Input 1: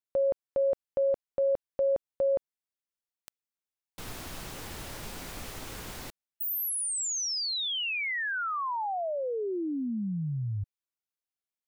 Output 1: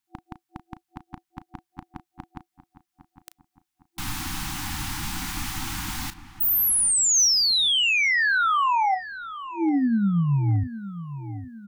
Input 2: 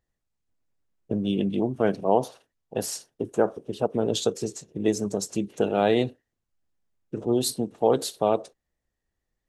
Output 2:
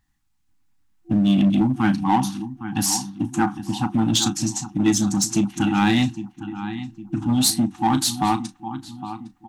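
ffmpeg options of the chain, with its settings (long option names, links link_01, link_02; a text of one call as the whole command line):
ffmpeg -i in.wav -filter_complex "[0:a]asplit=2[link_01][link_02];[link_02]adelay=35,volume=-13.5dB[link_03];[link_01][link_03]amix=inputs=2:normalize=0,asplit=2[link_04][link_05];[link_05]adelay=809,lowpass=frequency=2100:poles=1,volume=-13dB,asplit=2[link_06][link_07];[link_07]adelay=809,lowpass=frequency=2100:poles=1,volume=0.47,asplit=2[link_08][link_09];[link_09]adelay=809,lowpass=frequency=2100:poles=1,volume=0.47,asplit=2[link_10][link_11];[link_11]adelay=809,lowpass=frequency=2100:poles=1,volume=0.47,asplit=2[link_12][link_13];[link_13]adelay=809,lowpass=frequency=2100:poles=1,volume=0.47[link_14];[link_04][link_06][link_08][link_10][link_12][link_14]amix=inputs=6:normalize=0,afftfilt=real='re*(1-between(b*sr/4096,340,740))':imag='im*(1-between(b*sr/4096,340,740))':win_size=4096:overlap=0.75,adynamicequalizer=threshold=0.00251:dfrequency=6000:dqfactor=5.1:tfrequency=6000:tqfactor=5.1:attack=5:release=100:ratio=0.438:range=2:mode=boostabove:tftype=bell,asplit=2[link_15][link_16];[link_16]aeval=exprs='0.0501*(abs(mod(val(0)/0.0501+3,4)-2)-1)':channel_layout=same,volume=-9dB[link_17];[link_15][link_17]amix=inputs=2:normalize=0,volume=7.5dB" out.wav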